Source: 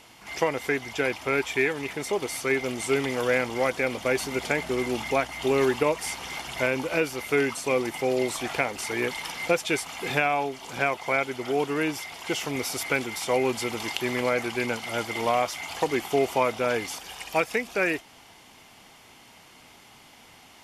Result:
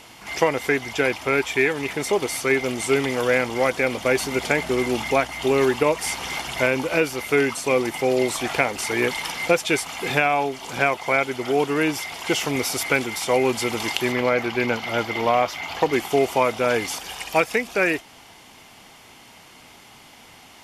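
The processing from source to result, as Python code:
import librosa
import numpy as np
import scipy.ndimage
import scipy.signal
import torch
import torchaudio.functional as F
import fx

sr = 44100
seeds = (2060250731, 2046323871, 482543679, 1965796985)

p1 = fx.peak_eq(x, sr, hz=9100.0, db=-14.0, octaves=1.0, at=(14.12, 15.93))
p2 = fx.rider(p1, sr, range_db=4, speed_s=0.5)
p3 = p1 + (p2 * librosa.db_to_amplitude(-0.5))
y = p3 * librosa.db_to_amplitude(-1.0)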